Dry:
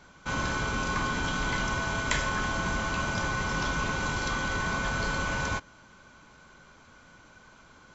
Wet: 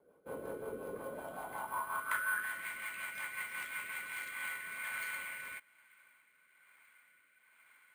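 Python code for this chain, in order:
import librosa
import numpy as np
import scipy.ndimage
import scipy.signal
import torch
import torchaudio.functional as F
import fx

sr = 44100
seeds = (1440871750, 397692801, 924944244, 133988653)

y = fx.filter_sweep_bandpass(x, sr, from_hz=470.0, to_hz=2100.0, start_s=0.92, end_s=2.68, q=5.4)
y = np.repeat(scipy.signal.resample_poly(y, 1, 4), 4)[:len(y)]
y = fx.rotary_switch(y, sr, hz=5.5, then_hz=1.1, switch_at_s=3.87)
y = y * librosa.db_to_amplitude(4.0)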